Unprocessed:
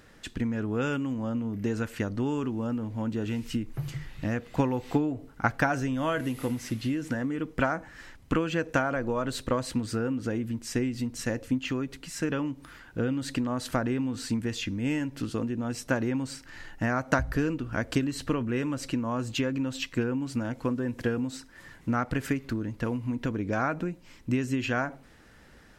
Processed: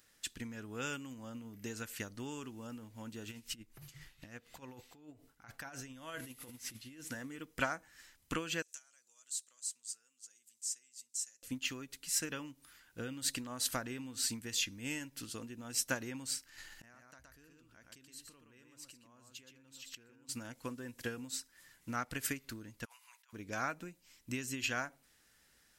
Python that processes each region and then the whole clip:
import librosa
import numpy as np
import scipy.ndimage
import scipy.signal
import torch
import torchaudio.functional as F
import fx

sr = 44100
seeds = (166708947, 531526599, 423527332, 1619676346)

y = fx.chain(x, sr, fx.tremolo(hz=4.1, depth=0.67),
    fx.high_shelf(hz=5900.0, db=-5.0),
    fx.over_compress(threshold_db=-34.0, ratio=-1.0), at=(3.31, 7.01))
y = fx.chain(y, sr, fx.bandpass_q(hz=7400.0, q=2.8),
    fx.band_squash(depth_pct=40), at=(8.62, 11.43))
y = fx.chain(y, sr, fx.echo_single(ms=120, db=-5.0),
    fx.gate_flip(shuts_db=-25.0, range_db=-29),
    fx.env_flatten(amount_pct=70), at=(16.58, 20.29))
y = fx.chain(y, sr, fx.steep_highpass(hz=860.0, slope=36),
    fx.over_compress(threshold_db=-48.0, ratio=-0.5), at=(22.85, 23.33))
y = scipy.signal.lfilter([1.0, -0.9], [1.0], y)
y = fx.upward_expand(y, sr, threshold_db=-58.0, expansion=1.5)
y = F.gain(torch.from_numpy(y), 8.5).numpy()